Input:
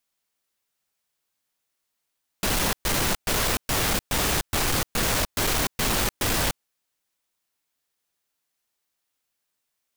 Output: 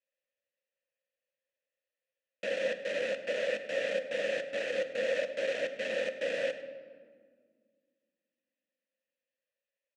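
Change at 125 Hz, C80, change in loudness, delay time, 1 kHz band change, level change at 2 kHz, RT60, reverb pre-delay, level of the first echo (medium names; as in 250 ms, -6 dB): under -25 dB, 11.5 dB, -9.5 dB, 101 ms, -20.5 dB, -7.0 dB, 1.9 s, 6 ms, -19.0 dB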